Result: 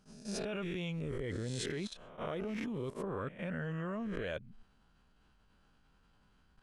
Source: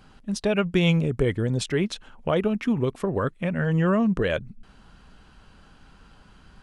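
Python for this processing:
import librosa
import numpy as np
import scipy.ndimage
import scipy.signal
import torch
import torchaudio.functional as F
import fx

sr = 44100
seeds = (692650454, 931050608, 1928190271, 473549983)

y = fx.spec_swells(x, sr, rise_s=0.68)
y = fx.level_steps(y, sr, step_db=15)
y = fx.attack_slew(y, sr, db_per_s=270.0)
y = y * librosa.db_to_amplitude(-8.0)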